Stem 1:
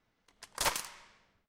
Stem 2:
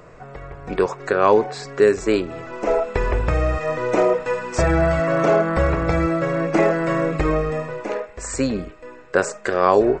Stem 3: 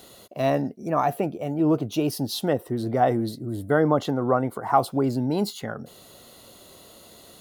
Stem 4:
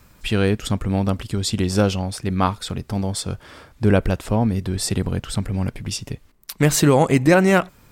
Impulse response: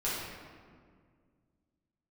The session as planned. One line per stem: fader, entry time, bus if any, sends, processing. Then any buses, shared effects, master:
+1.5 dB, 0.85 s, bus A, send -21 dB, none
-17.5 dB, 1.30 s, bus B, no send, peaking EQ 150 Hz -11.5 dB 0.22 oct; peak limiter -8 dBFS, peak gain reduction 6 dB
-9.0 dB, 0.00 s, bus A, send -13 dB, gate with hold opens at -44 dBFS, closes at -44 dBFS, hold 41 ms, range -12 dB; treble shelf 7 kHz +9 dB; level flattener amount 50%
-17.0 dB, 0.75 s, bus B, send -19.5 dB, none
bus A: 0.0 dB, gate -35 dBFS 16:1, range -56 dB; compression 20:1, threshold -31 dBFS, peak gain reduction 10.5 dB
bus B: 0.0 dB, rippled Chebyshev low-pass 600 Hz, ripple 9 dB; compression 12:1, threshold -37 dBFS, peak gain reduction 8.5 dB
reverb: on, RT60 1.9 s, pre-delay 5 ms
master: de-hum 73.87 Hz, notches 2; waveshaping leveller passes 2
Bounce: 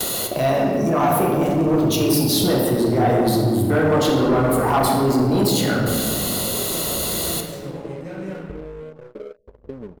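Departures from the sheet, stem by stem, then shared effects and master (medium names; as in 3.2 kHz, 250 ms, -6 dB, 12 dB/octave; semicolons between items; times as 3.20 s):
stem 1 +1.5 dB -> -10.0 dB; stem 2 -17.5 dB -> -7.5 dB; stem 3 -9.0 dB -> +1.0 dB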